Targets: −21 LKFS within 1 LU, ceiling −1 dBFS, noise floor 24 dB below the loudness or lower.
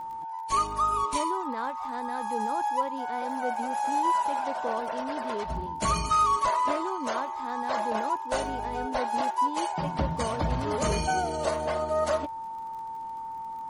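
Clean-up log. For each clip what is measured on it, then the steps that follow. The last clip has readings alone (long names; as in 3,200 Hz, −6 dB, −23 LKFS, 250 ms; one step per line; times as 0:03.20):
crackle rate 41 per second; interfering tone 900 Hz; level of the tone −34 dBFS; integrated loudness −29.0 LKFS; sample peak −15.0 dBFS; target loudness −21.0 LKFS
→ click removal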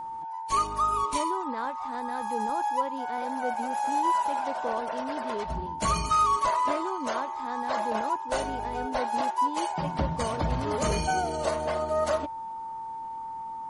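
crackle rate 0.073 per second; interfering tone 900 Hz; level of the tone −34 dBFS
→ notch filter 900 Hz, Q 30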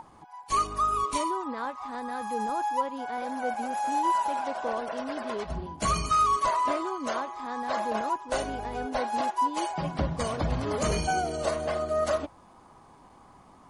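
interfering tone none found; integrated loudness −29.0 LKFS; sample peak −15.0 dBFS; target loudness −21.0 LKFS
→ level +8 dB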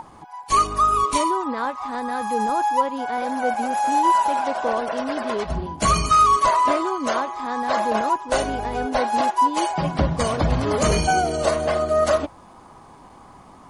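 integrated loudness −21.0 LKFS; sample peak −7.0 dBFS; background noise floor −46 dBFS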